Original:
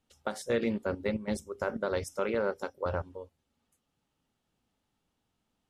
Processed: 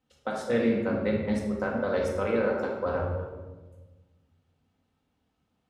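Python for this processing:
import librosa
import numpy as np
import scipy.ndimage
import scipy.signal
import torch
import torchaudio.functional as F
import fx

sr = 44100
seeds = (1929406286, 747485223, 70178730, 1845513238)

y = scipy.signal.sosfilt(scipy.signal.butter(2, 42.0, 'highpass', fs=sr, output='sos'), x)
y = fx.high_shelf(y, sr, hz=5500.0, db=-10.0)
y = fx.room_shoebox(y, sr, seeds[0], volume_m3=860.0, walls='mixed', distance_m=2.0)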